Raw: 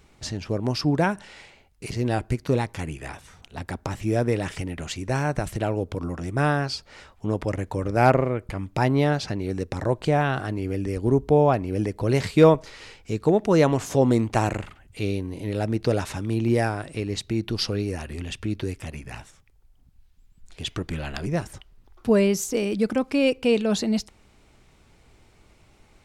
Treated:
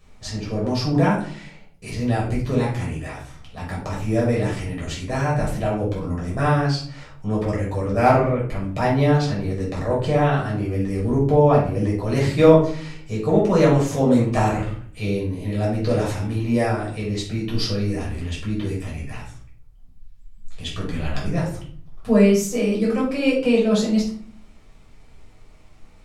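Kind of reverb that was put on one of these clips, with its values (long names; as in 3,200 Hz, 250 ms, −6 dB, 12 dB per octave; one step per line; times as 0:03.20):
rectangular room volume 500 cubic metres, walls furnished, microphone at 6 metres
level −6.5 dB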